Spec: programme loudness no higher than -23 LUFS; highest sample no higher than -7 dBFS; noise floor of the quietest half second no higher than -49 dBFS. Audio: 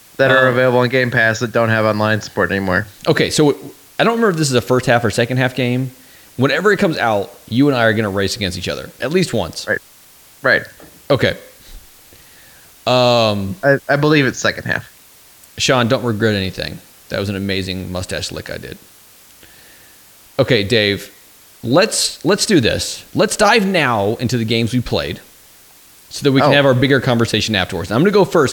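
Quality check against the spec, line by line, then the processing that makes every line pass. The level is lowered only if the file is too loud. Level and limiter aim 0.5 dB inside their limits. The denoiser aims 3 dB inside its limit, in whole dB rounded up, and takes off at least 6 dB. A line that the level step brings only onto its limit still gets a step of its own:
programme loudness -15.5 LUFS: fail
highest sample -1.5 dBFS: fail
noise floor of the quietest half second -45 dBFS: fail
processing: trim -8 dB

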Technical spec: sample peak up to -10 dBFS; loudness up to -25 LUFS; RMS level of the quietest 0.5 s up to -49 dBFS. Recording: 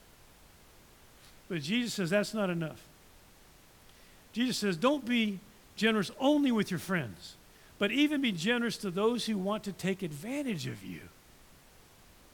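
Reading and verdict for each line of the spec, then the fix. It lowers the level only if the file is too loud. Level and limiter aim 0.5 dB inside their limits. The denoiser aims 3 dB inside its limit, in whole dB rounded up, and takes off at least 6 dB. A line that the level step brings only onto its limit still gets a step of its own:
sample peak -13.0 dBFS: pass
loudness -31.5 LUFS: pass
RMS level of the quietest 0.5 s -58 dBFS: pass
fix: none needed

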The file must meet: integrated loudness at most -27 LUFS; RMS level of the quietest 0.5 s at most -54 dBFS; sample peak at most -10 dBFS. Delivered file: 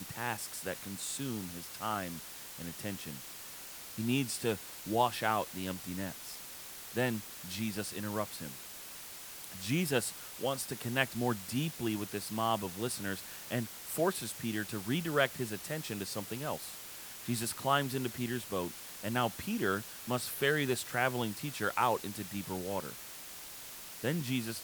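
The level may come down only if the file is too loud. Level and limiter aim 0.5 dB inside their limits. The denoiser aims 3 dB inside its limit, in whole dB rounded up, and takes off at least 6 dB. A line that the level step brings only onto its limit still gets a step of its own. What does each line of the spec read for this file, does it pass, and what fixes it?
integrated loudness -35.5 LUFS: pass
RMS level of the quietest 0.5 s -47 dBFS: fail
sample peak -11.5 dBFS: pass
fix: noise reduction 10 dB, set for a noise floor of -47 dBFS

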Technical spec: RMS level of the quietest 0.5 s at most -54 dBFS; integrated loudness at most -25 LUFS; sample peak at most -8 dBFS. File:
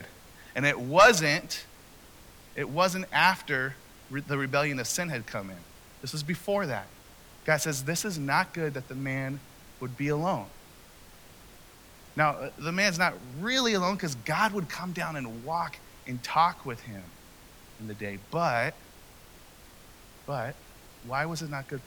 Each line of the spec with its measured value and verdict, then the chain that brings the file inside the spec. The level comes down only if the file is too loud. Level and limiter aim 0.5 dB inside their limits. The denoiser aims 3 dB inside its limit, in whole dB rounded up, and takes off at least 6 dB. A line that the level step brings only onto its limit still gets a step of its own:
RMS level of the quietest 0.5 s -52 dBFS: fail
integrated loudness -28.5 LUFS: pass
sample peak -9.0 dBFS: pass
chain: noise reduction 6 dB, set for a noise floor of -52 dBFS

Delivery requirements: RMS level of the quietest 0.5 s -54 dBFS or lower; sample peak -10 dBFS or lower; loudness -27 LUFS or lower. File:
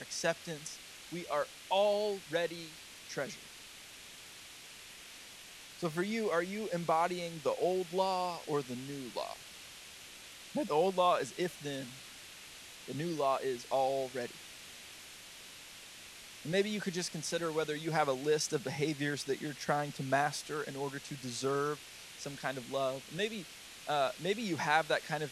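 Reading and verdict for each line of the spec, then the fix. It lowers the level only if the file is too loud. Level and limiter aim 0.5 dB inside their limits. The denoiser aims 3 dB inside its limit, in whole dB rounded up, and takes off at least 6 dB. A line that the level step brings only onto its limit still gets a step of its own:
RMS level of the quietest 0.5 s -52 dBFS: fail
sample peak -14.0 dBFS: pass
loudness -35.0 LUFS: pass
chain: noise reduction 6 dB, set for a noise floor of -52 dBFS

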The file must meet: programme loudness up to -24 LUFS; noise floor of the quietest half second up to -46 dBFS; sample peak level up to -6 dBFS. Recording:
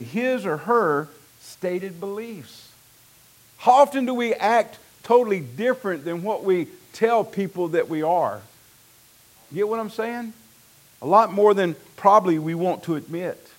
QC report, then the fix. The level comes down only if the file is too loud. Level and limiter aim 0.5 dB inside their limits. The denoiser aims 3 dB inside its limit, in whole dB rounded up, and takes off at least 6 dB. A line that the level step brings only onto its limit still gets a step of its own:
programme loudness -22.0 LUFS: fail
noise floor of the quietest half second -54 dBFS: pass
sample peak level -3.5 dBFS: fail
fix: trim -2.5 dB; peak limiter -6.5 dBFS

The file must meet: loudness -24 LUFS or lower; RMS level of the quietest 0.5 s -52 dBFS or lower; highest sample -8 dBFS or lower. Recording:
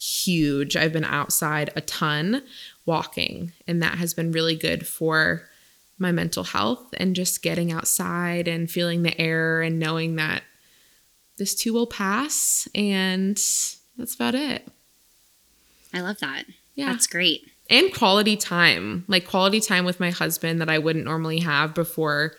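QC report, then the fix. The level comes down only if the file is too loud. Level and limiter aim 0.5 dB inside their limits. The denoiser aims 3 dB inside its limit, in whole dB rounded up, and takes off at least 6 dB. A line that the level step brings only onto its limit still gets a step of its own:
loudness -22.5 LUFS: fail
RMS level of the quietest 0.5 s -60 dBFS: pass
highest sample -1.5 dBFS: fail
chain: trim -2 dB; peak limiter -8.5 dBFS

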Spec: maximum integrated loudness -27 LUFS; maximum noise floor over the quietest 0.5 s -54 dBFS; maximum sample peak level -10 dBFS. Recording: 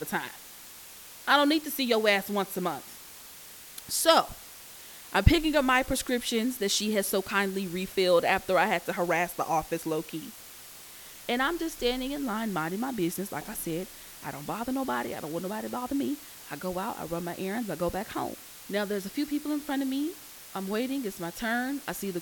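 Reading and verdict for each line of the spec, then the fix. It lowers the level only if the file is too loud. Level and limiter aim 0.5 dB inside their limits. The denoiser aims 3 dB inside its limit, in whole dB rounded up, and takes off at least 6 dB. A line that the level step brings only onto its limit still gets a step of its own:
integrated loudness -29.0 LUFS: pass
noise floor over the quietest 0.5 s -47 dBFS: fail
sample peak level -5.5 dBFS: fail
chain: noise reduction 10 dB, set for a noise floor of -47 dBFS; peak limiter -10.5 dBFS

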